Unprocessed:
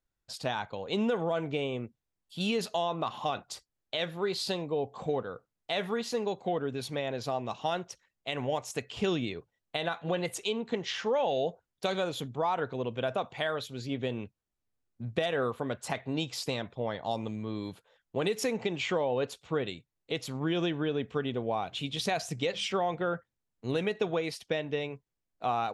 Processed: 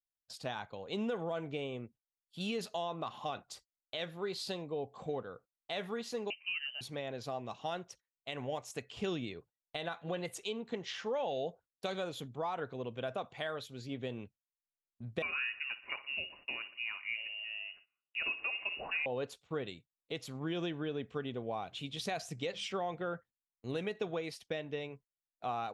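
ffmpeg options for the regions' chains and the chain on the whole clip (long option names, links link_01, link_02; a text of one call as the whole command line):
ffmpeg -i in.wav -filter_complex "[0:a]asettb=1/sr,asplit=3[link_01][link_02][link_03];[link_01]atrim=end=6.304[link_04];[link_02]atrim=start=6.3:end=6.81,asetpts=PTS-STARTPTS,afade=type=in:duration=0.004:curve=qsin,afade=type=out:start_time=0.506:duration=0.004:curve=qsin,equalizer=frequency=130:width_type=o:width=1.3:gain=-6,lowpass=frequency=2700:width_type=q:width=0.5098,lowpass=frequency=2700:width_type=q:width=0.6013,lowpass=frequency=2700:width_type=q:width=0.9,lowpass=frequency=2700:width_type=q:width=2.563,afreqshift=-3200[link_05];[link_03]atrim=start=6.806[link_06];[link_04][link_05]acrossfade=duration=0.004:curve1=hsin:curve2=qsin[link_07];[link_07][link_06]acrossfade=duration=0.004:curve1=qsin:curve2=hsin,asettb=1/sr,asplit=3[link_08][link_09][link_10];[link_08]atrim=end=15.224[link_11];[link_09]atrim=start=15.22:end=19.06,asetpts=PTS-STARTPTS,afade=type=in:duration=0.004:curve=qsin,afade=type=out:start_time=3.836:duration=0.004:curve=qsin,aecho=1:1:61|122|183|244|305|366:0.168|0.0974|0.0565|0.0328|0.019|0.011,atrim=end_sample=169344,lowpass=frequency=2600:width_type=q:width=0.5098,lowpass=frequency=2600:width_type=q:width=0.6013,lowpass=frequency=2600:width_type=q:width=0.9,lowpass=frequency=2600:width_type=q:width=2.563,afreqshift=-3000[link_12];[link_10]atrim=start=19.056[link_13];[link_11][link_12]acrossfade=duration=0.004:curve1=hsin:curve2=qsin[link_14];[link_14][link_13]acrossfade=duration=0.004:curve1=qsin:curve2=hsin,agate=range=-18dB:threshold=-51dB:ratio=16:detection=peak,bandreject=frequency=920:width=22,volume=-7dB" out.wav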